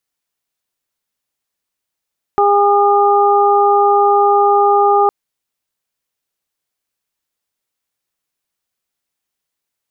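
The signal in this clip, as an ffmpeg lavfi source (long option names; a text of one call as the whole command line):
ffmpeg -f lavfi -i "aevalsrc='0.224*sin(2*PI*406*t)+0.282*sin(2*PI*812*t)+0.168*sin(2*PI*1218*t)':duration=2.71:sample_rate=44100" out.wav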